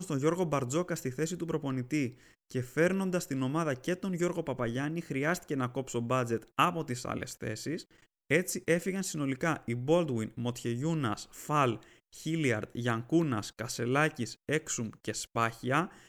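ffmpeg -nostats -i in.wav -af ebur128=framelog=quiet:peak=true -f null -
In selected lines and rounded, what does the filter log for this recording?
Integrated loudness:
  I:         -32.3 LUFS
  Threshold: -42.5 LUFS
Loudness range:
  LRA:         1.3 LU
  Threshold: -52.5 LUFS
  LRA low:   -33.0 LUFS
  LRA high:  -31.7 LUFS
True peak:
  Peak:      -12.1 dBFS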